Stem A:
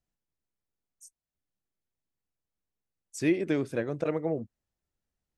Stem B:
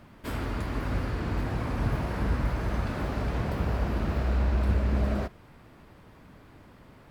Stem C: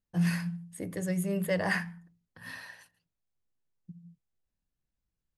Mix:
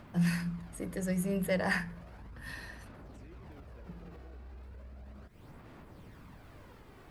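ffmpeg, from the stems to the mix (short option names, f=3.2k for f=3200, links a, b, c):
-filter_complex "[0:a]volume=-18.5dB[a];[1:a]acompressor=threshold=-40dB:ratio=3,acrusher=bits=11:mix=0:aa=0.000001,aphaser=in_gain=1:out_gain=1:delay=2.7:decay=0.4:speed=0.35:type=sinusoidal,volume=-1.5dB[b];[2:a]volume=-1.5dB[c];[a][b]amix=inputs=2:normalize=0,alimiter=level_in=19dB:limit=-24dB:level=0:latency=1:release=109,volume=-19dB,volume=0dB[d];[c][d]amix=inputs=2:normalize=0"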